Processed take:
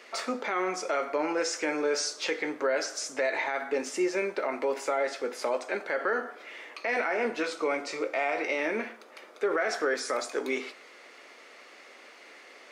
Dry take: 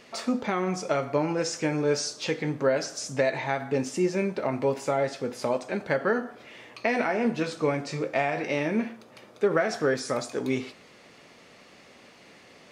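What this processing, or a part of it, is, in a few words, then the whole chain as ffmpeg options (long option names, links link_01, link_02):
laptop speaker: -filter_complex "[0:a]asettb=1/sr,asplit=3[link_01][link_02][link_03];[link_01]atrim=end=7.484[link_04];[link_02]atrim=start=7.48:end=8.59,asetpts=PTS-STARTPTS,afade=type=in:duration=0.004:curve=qsin,afade=type=out:start_time=1.106:duration=0.004:curve=qsin,bandreject=frequency=1700:width=7.8[link_05];[link_03]atrim=start=8.586[link_06];[link_04][link_05]acrossfade=duration=0.004:curve1=hsin:curve2=qsin[link_07];[link_07][link_06]acrossfade=duration=0.004:curve1=qsin:curve2=hsin,highpass=frequency=320:width=0.5412,highpass=frequency=320:width=1.3066,equalizer=frequency=1400:width_type=o:width=0.57:gain=5,equalizer=frequency=2100:width_type=o:width=0.3:gain=5,alimiter=limit=-19dB:level=0:latency=1:release=29"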